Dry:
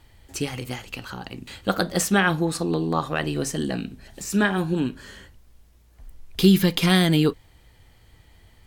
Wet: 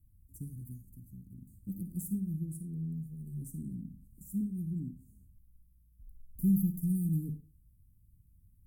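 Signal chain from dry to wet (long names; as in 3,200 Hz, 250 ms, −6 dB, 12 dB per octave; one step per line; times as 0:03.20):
inverse Chebyshev band-stop filter 760–3,500 Hz, stop band 70 dB
0:02.58–0:03.42: phaser with its sweep stopped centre 430 Hz, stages 8
convolution reverb RT60 0.35 s, pre-delay 48 ms, DRR 10 dB
level −9 dB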